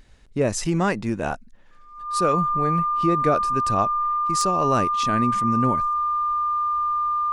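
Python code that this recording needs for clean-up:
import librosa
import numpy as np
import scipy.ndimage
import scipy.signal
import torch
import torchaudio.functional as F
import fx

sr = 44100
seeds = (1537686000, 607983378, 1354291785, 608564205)

y = fx.fix_declip(x, sr, threshold_db=-8.5)
y = fx.notch(y, sr, hz=1200.0, q=30.0)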